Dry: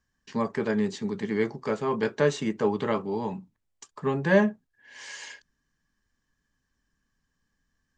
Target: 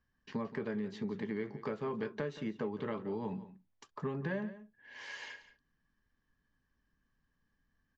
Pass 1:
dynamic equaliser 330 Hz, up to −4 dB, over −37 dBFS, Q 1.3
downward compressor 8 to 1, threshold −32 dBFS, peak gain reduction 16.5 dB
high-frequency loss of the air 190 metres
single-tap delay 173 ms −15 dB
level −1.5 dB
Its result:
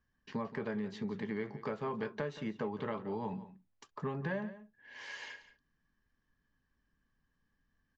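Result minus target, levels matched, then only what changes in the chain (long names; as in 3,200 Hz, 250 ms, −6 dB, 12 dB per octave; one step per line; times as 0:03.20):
1,000 Hz band +3.0 dB
change: dynamic equaliser 790 Hz, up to −4 dB, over −37 dBFS, Q 1.3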